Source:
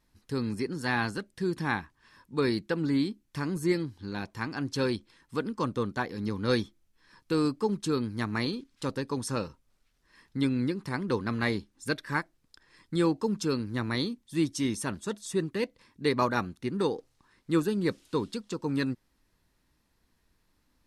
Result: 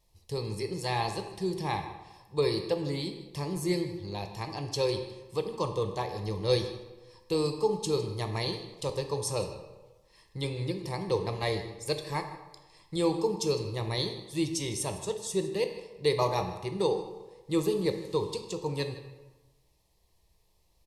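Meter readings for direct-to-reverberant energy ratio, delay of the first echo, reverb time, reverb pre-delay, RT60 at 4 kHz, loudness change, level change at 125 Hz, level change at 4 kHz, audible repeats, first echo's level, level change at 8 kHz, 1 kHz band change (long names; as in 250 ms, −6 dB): 5.5 dB, 156 ms, 1.2 s, 7 ms, 0.75 s, −1.0 dB, 0.0 dB, +2.5 dB, 1, −17.0 dB, +4.0 dB, 0.0 dB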